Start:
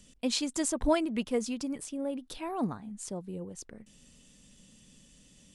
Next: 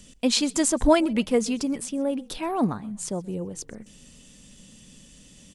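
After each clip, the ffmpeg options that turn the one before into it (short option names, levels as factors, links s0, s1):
-filter_complex "[0:a]asplit=4[s0][s1][s2][s3];[s1]adelay=128,afreqshift=-35,volume=0.0668[s4];[s2]adelay=256,afreqshift=-70,volume=0.0266[s5];[s3]adelay=384,afreqshift=-105,volume=0.0107[s6];[s0][s4][s5][s6]amix=inputs=4:normalize=0,volume=2.51"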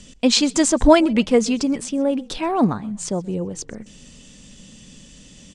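-af "lowpass=f=8000:w=0.5412,lowpass=f=8000:w=1.3066,volume=2"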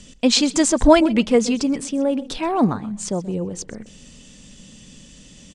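-filter_complex "[0:a]asplit=2[s0][s1];[s1]adelay=128.3,volume=0.126,highshelf=f=4000:g=-2.89[s2];[s0][s2]amix=inputs=2:normalize=0"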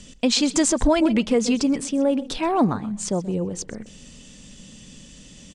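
-af "alimiter=limit=0.316:level=0:latency=1:release=109"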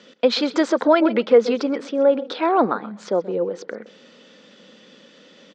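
-af "highpass=f=260:w=0.5412,highpass=f=260:w=1.3066,equalizer=f=270:t=q:w=4:g=-5,equalizer=f=500:t=q:w=4:g=7,equalizer=f=1400:t=q:w=4:g=8,equalizer=f=2800:t=q:w=4:g=-7,lowpass=f=4000:w=0.5412,lowpass=f=4000:w=1.3066,volume=1.41"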